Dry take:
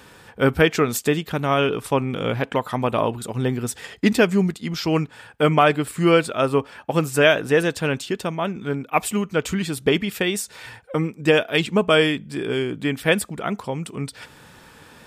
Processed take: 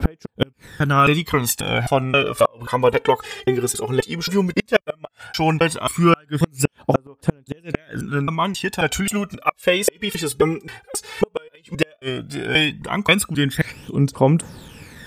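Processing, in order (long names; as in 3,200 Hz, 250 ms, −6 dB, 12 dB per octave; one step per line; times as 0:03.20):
slices reordered back to front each 267 ms, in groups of 3
phase shifter 0.14 Hz, delay 2.6 ms, feedback 70%
gate with flip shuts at −5 dBFS, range −37 dB
level +3 dB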